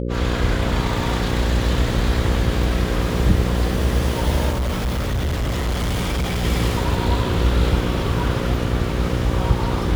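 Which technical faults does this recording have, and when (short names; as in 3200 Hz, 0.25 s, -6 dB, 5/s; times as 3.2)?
buzz 60 Hz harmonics 9 -24 dBFS
4.5–6.45 clipped -18.5 dBFS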